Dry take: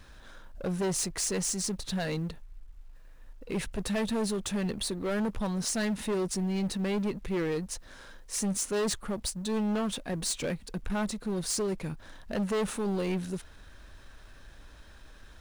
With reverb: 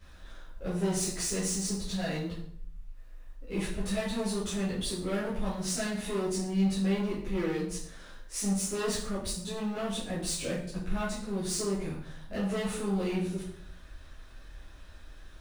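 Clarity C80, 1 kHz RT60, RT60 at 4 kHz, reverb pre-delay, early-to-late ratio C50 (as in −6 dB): 8.0 dB, 0.55 s, 0.45 s, 8 ms, 4.5 dB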